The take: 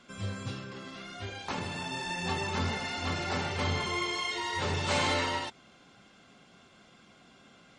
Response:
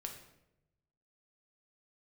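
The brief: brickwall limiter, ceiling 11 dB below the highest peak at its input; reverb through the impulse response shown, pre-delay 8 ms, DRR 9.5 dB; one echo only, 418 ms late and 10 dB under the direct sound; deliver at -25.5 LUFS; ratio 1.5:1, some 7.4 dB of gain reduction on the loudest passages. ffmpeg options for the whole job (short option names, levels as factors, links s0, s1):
-filter_complex "[0:a]acompressor=threshold=0.00501:ratio=1.5,alimiter=level_in=3.98:limit=0.0631:level=0:latency=1,volume=0.251,aecho=1:1:418:0.316,asplit=2[s0][s1];[1:a]atrim=start_sample=2205,adelay=8[s2];[s1][s2]afir=irnorm=-1:irlink=0,volume=0.447[s3];[s0][s3]amix=inputs=2:normalize=0,volume=7.94"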